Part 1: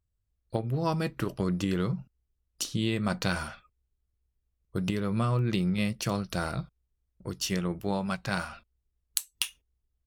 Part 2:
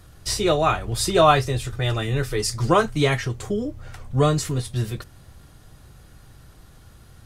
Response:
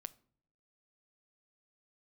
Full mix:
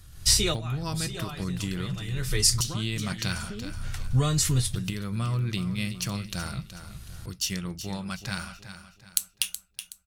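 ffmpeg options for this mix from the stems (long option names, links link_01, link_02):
-filter_complex "[0:a]volume=-4dB,asplit=4[link_01][link_02][link_03][link_04];[link_02]volume=-7.5dB[link_05];[link_03]volume=-9.5dB[link_06];[1:a]acompressor=threshold=-21dB:ratio=6,volume=0.5dB,asplit=2[link_07][link_08];[link_08]volume=-16.5dB[link_09];[link_04]apad=whole_len=320132[link_10];[link_07][link_10]sidechaincompress=threshold=-48dB:ratio=12:attack=10:release=363[link_11];[2:a]atrim=start_sample=2205[link_12];[link_05][link_09]amix=inputs=2:normalize=0[link_13];[link_13][link_12]afir=irnorm=-1:irlink=0[link_14];[link_06]aecho=0:1:373|746|1119|1492|1865:1|0.38|0.144|0.0549|0.0209[link_15];[link_01][link_11][link_14][link_15]amix=inputs=4:normalize=0,equalizer=frequency=530:width=0.37:gain=-14.5,dynaudnorm=framelen=120:gausssize=3:maxgain=7dB"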